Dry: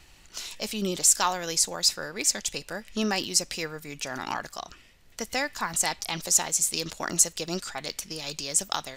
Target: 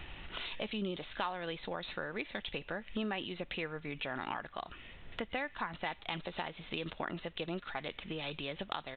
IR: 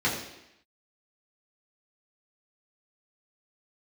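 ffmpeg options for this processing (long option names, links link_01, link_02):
-af "aresample=8000,aresample=44100,acompressor=threshold=-49dB:ratio=3,volume=8.5dB"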